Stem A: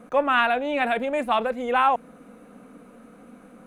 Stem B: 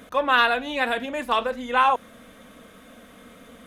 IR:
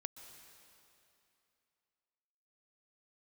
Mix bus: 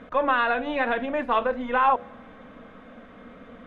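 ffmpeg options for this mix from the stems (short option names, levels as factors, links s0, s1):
-filter_complex "[0:a]aeval=exprs='max(val(0),0)':c=same,acompressor=threshold=0.0282:ratio=6,volume=0.473[s0];[1:a]alimiter=limit=0.224:level=0:latency=1:release=57,volume=1.19,asplit=2[s1][s2];[s2]volume=0.133[s3];[2:a]atrim=start_sample=2205[s4];[s3][s4]afir=irnorm=-1:irlink=0[s5];[s0][s1][s5]amix=inputs=3:normalize=0,lowpass=2000,bandreject=f=70.31:t=h:w=4,bandreject=f=140.62:t=h:w=4,bandreject=f=210.93:t=h:w=4,bandreject=f=281.24:t=h:w=4,bandreject=f=351.55:t=h:w=4,bandreject=f=421.86:t=h:w=4,bandreject=f=492.17:t=h:w=4,bandreject=f=562.48:t=h:w=4,bandreject=f=632.79:t=h:w=4,bandreject=f=703.1:t=h:w=4"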